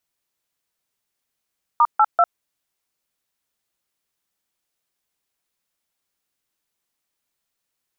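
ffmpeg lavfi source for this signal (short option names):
-f lavfi -i "aevalsrc='0.211*clip(min(mod(t,0.194),0.052-mod(t,0.194))/0.002,0,1)*(eq(floor(t/0.194),0)*(sin(2*PI*941*mod(t,0.194))+sin(2*PI*1209*mod(t,0.194)))+eq(floor(t/0.194),1)*(sin(2*PI*852*mod(t,0.194))+sin(2*PI*1336*mod(t,0.194)))+eq(floor(t/0.194),2)*(sin(2*PI*697*mod(t,0.194))+sin(2*PI*1336*mod(t,0.194))))':d=0.582:s=44100"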